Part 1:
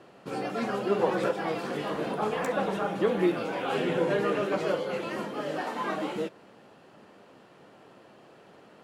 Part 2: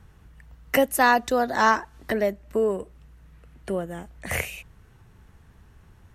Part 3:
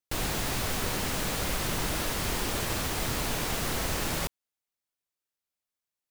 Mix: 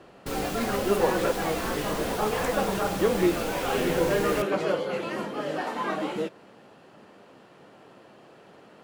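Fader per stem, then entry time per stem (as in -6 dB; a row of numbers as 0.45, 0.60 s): +2.0, -18.0, -5.5 dB; 0.00, 0.00, 0.15 s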